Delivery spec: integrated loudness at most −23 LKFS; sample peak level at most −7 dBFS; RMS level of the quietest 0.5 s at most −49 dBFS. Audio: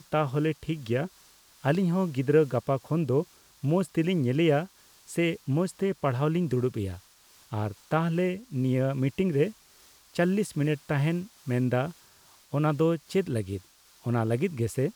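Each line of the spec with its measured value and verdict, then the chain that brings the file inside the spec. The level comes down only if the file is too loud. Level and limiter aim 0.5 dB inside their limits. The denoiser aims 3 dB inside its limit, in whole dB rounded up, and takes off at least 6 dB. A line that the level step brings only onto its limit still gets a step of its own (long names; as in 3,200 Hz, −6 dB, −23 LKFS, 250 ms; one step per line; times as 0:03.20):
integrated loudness −28.0 LKFS: in spec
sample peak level −11.0 dBFS: in spec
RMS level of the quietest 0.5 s −58 dBFS: in spec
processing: no processing needed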